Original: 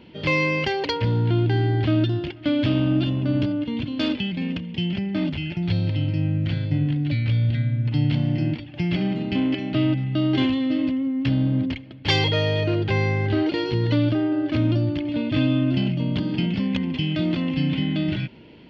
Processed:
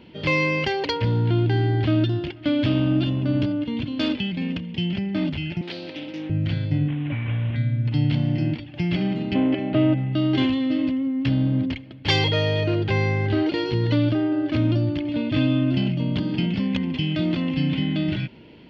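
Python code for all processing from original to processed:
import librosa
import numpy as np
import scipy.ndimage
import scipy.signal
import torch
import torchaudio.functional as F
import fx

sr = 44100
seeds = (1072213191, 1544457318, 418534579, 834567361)

y = fx.chain(x, sr, fx.highpass(hz=270.0, slope=24),
    fx.doubler(ms=25.0, db=-13),
    fx.doppler_dist(depth_ms=0.21), at=(5.61, 6.3))
y = fx.chain(y, sr, fx.cvsd(bps=16000),
    fx.low_shelf(hz=170.0, db=-5.5),
    fx.notch(hz=1300.0, q=15.0), at=(6.88, 7.56))
y = fx.chain(y, sr, fx.lowpass(hz=2800.0, slope=12),
    fx.peak_eq(hz=590.0, db=7.0, octaves=1.3), at=(9.34, 10.13))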